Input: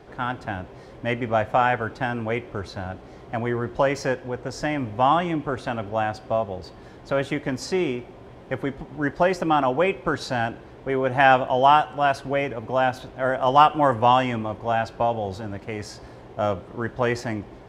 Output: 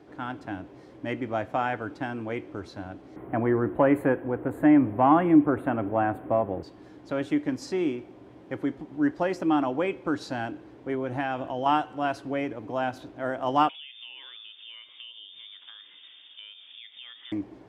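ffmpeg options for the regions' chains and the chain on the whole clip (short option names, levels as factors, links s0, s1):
-filter_complex "[0:a]asettb=1/sr,asplit=3[s0][s1][s2];[s0]atrim=end=3.164[s3];[s1]atrim=start=3.16:end=6.63,asetpts=PTS-STARTPTS,afade=t=in:d=0.004:c=qsin,afade=t=out:st=3.466:d=0.004:c=qsin,highshelf=f=7600:g=9.5,acontrast=85,asuperstop=centerf=5400:order=4:qfactor=0.51[s4];[s2]atrim=start=6.626[s5];[s3][s4]acrossfade=d=0.004:c1=hsin:c2=qsin[s6];[s6][s5]acrossfade=d=0.004:c1=qsin:c2=hsin,asettb=1/sr,asplit=3[s7][s8][s9];[s7]atrim=end=10.944[s10];[s8]atrim=start=10.94:end=11.66,asetpts=PTS-STARTPTS,afade=t=in:d=0.004:c=qsin,afade=t=out:st=0.716:d=0.004:c=qsin,lowshelf=f=120:g=7,acompressor=threshold=0.0891:ratio=2.5:attack=3.2:release=140:knee=1:detection=peak[s11];[s9]atrim=start=11.656[s12];[s10][s11]acrossfade=d=0.004:c1=hsin:c2=qsin[s13];[s13][s12]acrossfade=d=0.004:c1=qsin:c2=hsin,asettb=1/sr,asplit=3[s14][s15][s16];[s14]atrim=end=13.694[s17];[s15]atrim=start=13.69:end=17.32,asetpts=PTS-STARTPTS,afade=t=in:d=0.004:c=qsin,afade=t=out:st=3.626:d=0.004:c=qsin,acompressor=threshold=0.02:ratio=6:attack=3.2:release=140:knee=1:detection=peak,lowpass=f=3100:t=q:w=0.5098,lowpass=f=3100:t=q:w=0.6013,lowpass=f=3100:t=q:w=0.9,lowpass=f=3100:t=q:w=2.563,afreqshift=-3700[s18];[s16]atrim=start=17.316[s19];[s17][s18]acrossfade=d=0.004:c1=hsin:c2=qsin[s20];[s20][s19]acrossfade=d=0.004:c1=qsin:c2=hsin,highpass=77,equalizer=f=300:w=4.2:g=13.5,volume=0.398"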